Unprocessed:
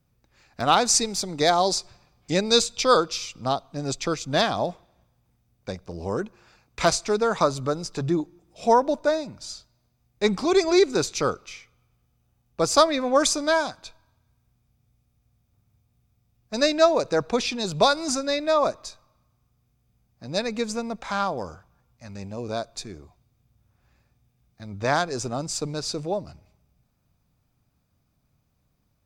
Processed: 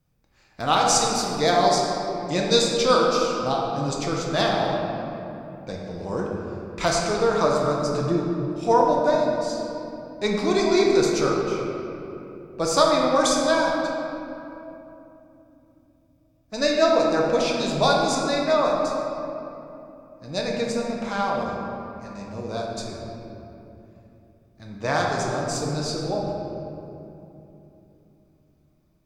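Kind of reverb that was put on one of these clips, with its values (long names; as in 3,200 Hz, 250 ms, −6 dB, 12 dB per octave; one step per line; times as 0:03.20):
rectangular room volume 140 cubic metres, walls hard, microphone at 0.56 metres
level −3 dB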